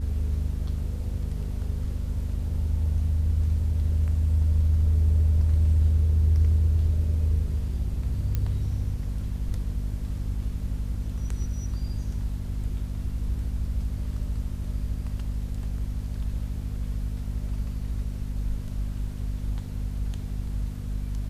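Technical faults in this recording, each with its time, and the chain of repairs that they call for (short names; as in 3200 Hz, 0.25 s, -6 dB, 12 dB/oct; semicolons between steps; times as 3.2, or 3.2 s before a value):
hum 50 Hz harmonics 5 -31 dBFS
8.35 pop -15 dBFS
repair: de-click; de-hum 50 Hz, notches 5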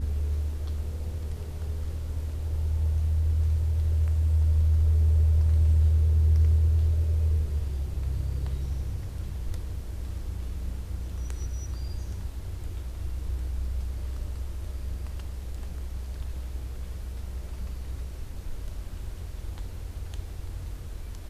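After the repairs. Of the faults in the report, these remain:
none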